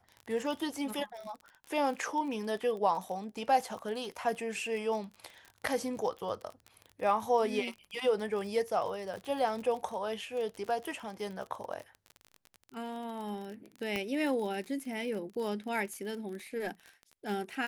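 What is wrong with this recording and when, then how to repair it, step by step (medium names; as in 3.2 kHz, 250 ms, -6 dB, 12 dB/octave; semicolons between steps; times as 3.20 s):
crackle 33 per s -38 dBFS
13.96 s: pop -19 dBFS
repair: de-click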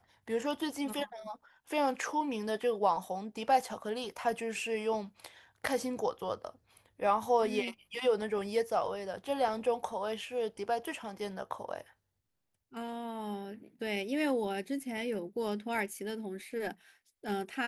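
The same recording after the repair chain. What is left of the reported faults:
13.96 s: pop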